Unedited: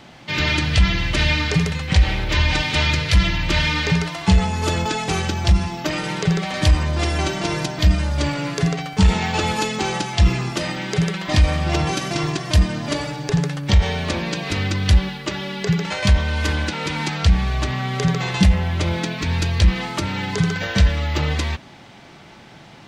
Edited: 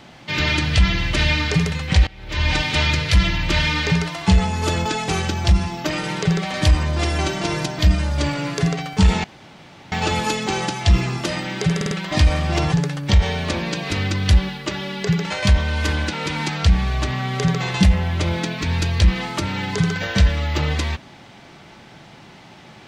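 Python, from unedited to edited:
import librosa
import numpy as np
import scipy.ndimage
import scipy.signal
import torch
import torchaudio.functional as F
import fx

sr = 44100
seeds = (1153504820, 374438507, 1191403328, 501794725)

y = fx.edit(x, sr, fx.fade_in_from(start_s=2.07, length_s=0.41, curve='qua', floor_db=-22.5),
    fx.insert_room_tone(at_s=9.24, length_s=0.68),
    fx.stutter(start_s=11.08, slice_s=0.05, count=4),
    fx.cut(start_s=11.89, length_s=1.43), tone=tone)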